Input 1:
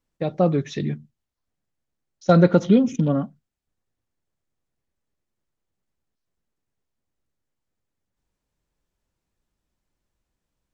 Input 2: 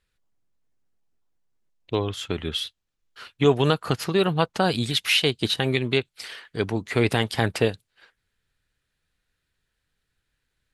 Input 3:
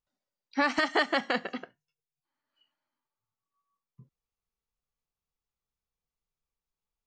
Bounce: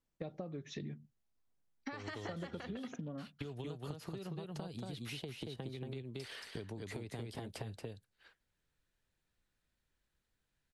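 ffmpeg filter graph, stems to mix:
ffmpeg -i stem1.wav -i stem2.wav -i stem3.wav -filter_complex "[0:a]acompressor=threshold=-20dB:ratio=6,volume=-7dB[link_01];[1:a]acrossover=split=170|750|3700[link_02][link_03][link_04][link_05];[link_02]acompressor=threshold=-28dB:ratio=4[link_06];[link_03]acompressor=threshold=-28dB:ratio=4[link_07];[link_04]acompressor=threshold=-45dB:ratio=4[link_08];[link_05]acompressor=threshold=-44dB:ratio=4[link_09];[link_06][link_07][link_08][link_09]amix=inputs=4:normalize=0,volume=-1.5dB,asplit=2[link_10][link_11];[link_11]volume=-8dB[link_12];[2:a]dynaudnorm=framelen=110:gausssize=11:maxgain=8dB,adelay=1300,volume=-3.5dB[link_13];[link_10][link_13]amix=inputs=2:normalize=0,agate=range=-38dB:threshold=-49dB:ratio=16:detection=peak,acompressor=threshold=-32dB:ratio=6,volume=0dB[link_14];[link_12]aecho=0:1:229:1[link_15];[link_01][link_14][link_15]amix=inputs=3:normalize=0,acompressor=threshold=-41dB:ratio=6" out.wav

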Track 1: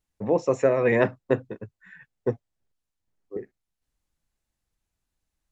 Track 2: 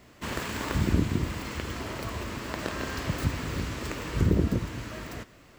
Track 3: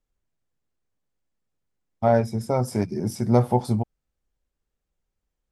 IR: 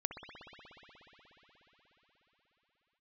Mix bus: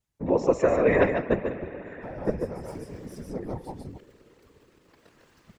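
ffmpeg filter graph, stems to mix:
-filter_complex "[0:a]volume=2dB,asplit=3[link_01][link_02][link_03];[link_02]volume=-6.5dB[link_04];[link_03]volume=-3dB[link_05];[1:a]adelay=2400,volume=-16.5dB[link_06];[2:a]volume=-7.5dB,asplit=2[link_07][link_08];[link_08]volume=-4.5dB[link_09];[link_06][link_07]amix=inputs=2:normalize=0,aeval=exprs='sgn(val(0))*max(abs(val(0))-0.00158,0)':channel_layout=same,acompressor=threshold=-30dB:ratio=6,volume=0dB[link_10];[3:a]atrim=start_sample=2205[link_11];[link_04][link_11]afir=irnorm=-1:irlink=0[link_12];[link_05][link_09]amix=inputs=2:normalize=0,aecho=0:1:146:1[link_13];[link_01][link_10][link_12][link_13]amix=inputs=4:normalize=0,bandreject=frequency=680:width=20,afftfilt=real='hypot(re,im)*cos(2*PI*random(0))':imag='hypot(re,im)*sin(2*PI*random(1))':win_size=512:overlap=0.75"

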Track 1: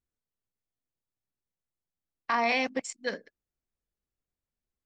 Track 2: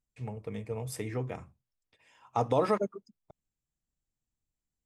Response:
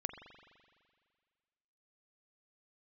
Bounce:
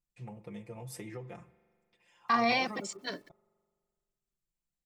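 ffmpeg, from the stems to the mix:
-filter_complex "[0:a]equalizer=frequency=125:width_type=o:width=1:gain=9,equalizer=frequency=250:width_type=o:width=1:gain=9,equalizer=frequency=1000:width_type=o:width=1:gain=8,equalizer=frequency=4000:width_type=o:width=1:gain=9,equalizer=frequency=8000:width_type=o:width=1:gain=3,acrusher=bits=9:mix=0:aa=0.000001,asplit=2[link_01][link_02];[link_02]adelay=2.1,afreqshift=-0.43[link_03];[link_01][link_03]amix=inputs=2:normalize=1,volume=-4dB[link_04];[1:a]aecho=1:1:5.7:0.95,acompressor=threshold=-33dB:ratio=6,volume=-9dB,asplit=2[link_05][link_06];[link_06]volume=-7dB[link_07];[2:a]atrim=start_sample=2205[link_08];[link_07][link_08]afir=irnorm=-1:irlink=0[link_09];[link_04][link_05][link_09]amix=inputs=3:normalize=0"

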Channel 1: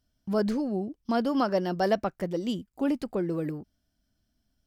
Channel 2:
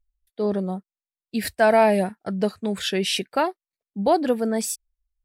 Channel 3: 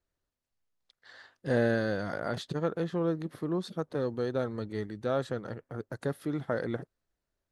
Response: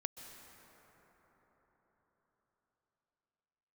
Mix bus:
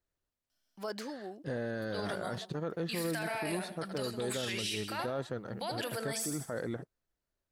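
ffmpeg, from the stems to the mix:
-filter_complex "[0:a]highpass=280,adelay=500,volume=1dB[link_01];[1:a]tiltshelf=frequency=970:gain=-8,acompressor=threshold=-26dB:ratio=2.5,adelay=1550,volume=1.5dB,asplit=2[link_02][link_03];[link_03]volume=-17.5dB[link_04];[2:a]volume=-3dB,asplit=2[link_05][link_06];[link_06]apad=whole_len=227918[link_07];[link_01][link_07]sidechaincompress=threshold=-49dB:ratio=6:attack=6.7:release=1380[link_08];[link_08][link_02]amix=inputs=2:normalize=0,equalizer=frequency=200:width=0.32:gain=-13,alimiter=level_in=3.5dB:limit=-24dB:level=0:latency=1:release=20,volume=-3.5dB,volume=0dB[link_09];[link_04]aecho=0:1:78|156|234|312|390|468|546:1|0.47|0.221|0.104|0.0488|0.0229|0.0108[link_10];[link_05][link_09][link_10]amix=inputs=3:normalize=0,alimiter=level_in=2dB:limit=-24dB:level=0:latency=1:release=22,volume=-2dB"

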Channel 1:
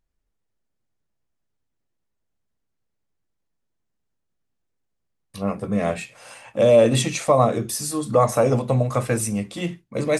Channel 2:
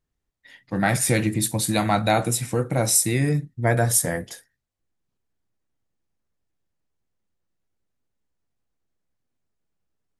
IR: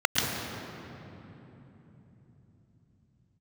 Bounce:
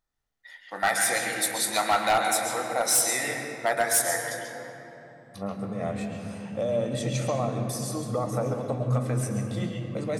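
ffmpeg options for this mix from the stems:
-filter_complex "[0:a]acompressor=threshold=-23dB:ratio=3,volume=-7dB,asplit=2[link_01][link_02];[link_02]volume=-17dB[link_03];[1:a]highpass=780,volume=-0.5dB,asplit=2[link_04][link_05];[link_05]volume=-15.5dB[link_06];[2:a]atrim=start_sample=2205[link_07];[link_03][link_06]amix=inputs=2:normalize=0[link_08];[link_08][link_07]afir=irnorm=-1:irlink=0[link_09];[link_01][link_04][link_09]amix=inputs=3:normalize=0,asoftclip=type=hard:threshold=-16.5dB"

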